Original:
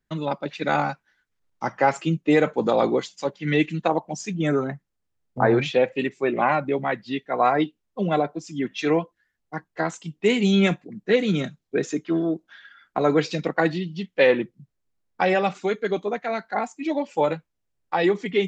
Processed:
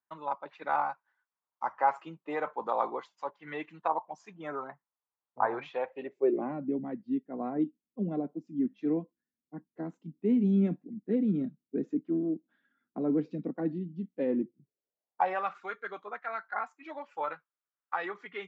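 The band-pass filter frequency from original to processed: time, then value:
band-pass filter, Q 3.4
5.85 s 1 kHz
6.52 s 250 Hz
14.38 s 250 Hz
15.48 s 1.3 kHz

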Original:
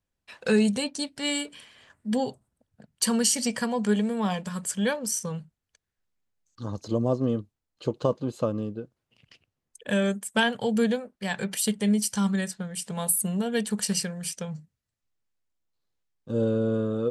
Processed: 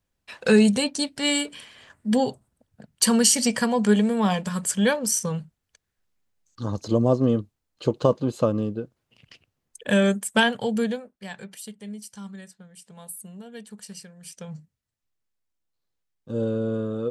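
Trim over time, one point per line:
10.30 s +5 dB
11.11 s -4.5 dB
11.70 s -14 dB
14.13 s -14 dB
14.55 s -1 dB

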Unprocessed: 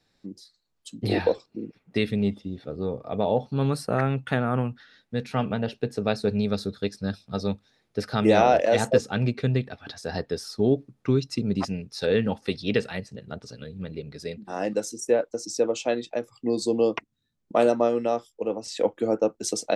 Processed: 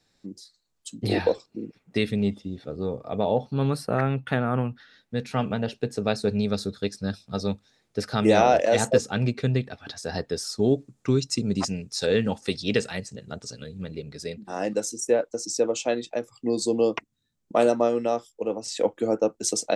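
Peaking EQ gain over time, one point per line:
peaking EQ 7.4 kHz 0.86 oct
3.05 s +6.5 dB
3.96 s -4 dB
4.46 s -4 dB
5.47 s +7 dB
10.25 s +7 dB
10.70 s +15 dB
13.58 s +15 dB
14.51 s +5.5 dB

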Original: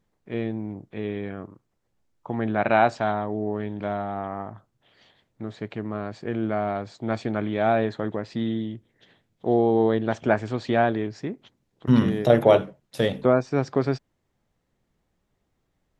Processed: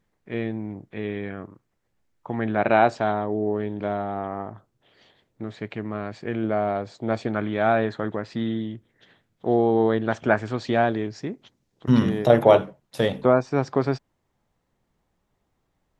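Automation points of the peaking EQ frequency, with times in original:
peaking EQ +4.5 dB 0.91 oct
1.9 kHz
from 2.56 s 400 Hz
from 5.44 s 2.2 kHz
from 6.44 s 500 Hz
from 7.27 s 1.4 kHz
from 10.59 s 5.8 kHz
from 12.09 s 940 Hz

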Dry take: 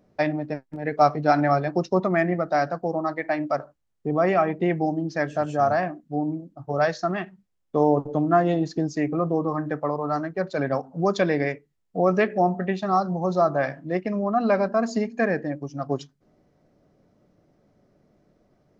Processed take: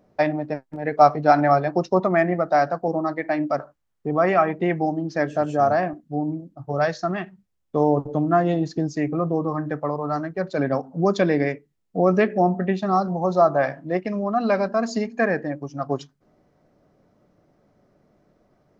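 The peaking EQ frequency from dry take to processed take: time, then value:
peaking EQ +4.5 dB 1.7 oct
810 Hz
from 2.88 s 250 Hz
from 3.59 s 1.3 kHz
from 5.16 s 370 Hz
from 5.93 s 85 Hz
from 10.48 s 250 Hz
from 13.08 s 800 Hz
from 14.05 s 4.4 kHz
from 15.06 s 1.1 kHz

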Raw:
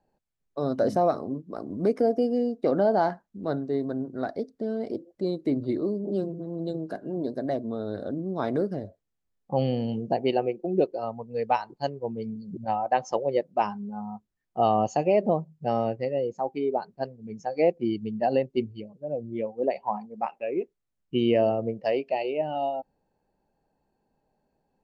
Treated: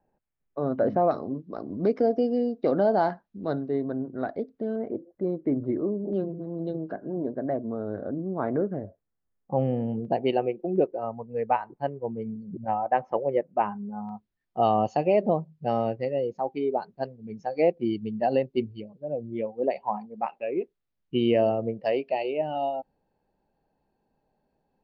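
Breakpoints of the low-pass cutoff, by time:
low-pass 24 dB/octave
2.5 kHz
from 1.11 s 4.8 kHz
from 3.68 s 3.2 kHz
from 4.76 s 1.9 kHz
from 6.13 s 3 kHz
from 6.92 s 1.9 kHz
from 10.05 s 3.5 kHz
from 10.76 s 2.3 kHz
from 14.09 s 4.7 kHz

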